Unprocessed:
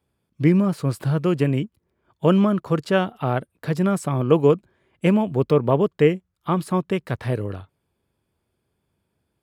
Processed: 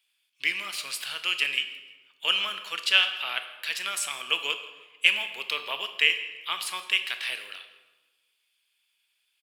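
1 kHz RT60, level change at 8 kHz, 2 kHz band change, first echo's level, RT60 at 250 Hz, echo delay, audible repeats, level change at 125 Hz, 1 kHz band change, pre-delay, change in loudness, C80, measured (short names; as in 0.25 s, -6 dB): 1.1 s, +7.5 dB, +8.0 dB, -21.5 dB, 1.4 s, 0.163 s, 1, under -40 dB, -9.0 dB, 15 ms, -5.0 dB, 11.0 dB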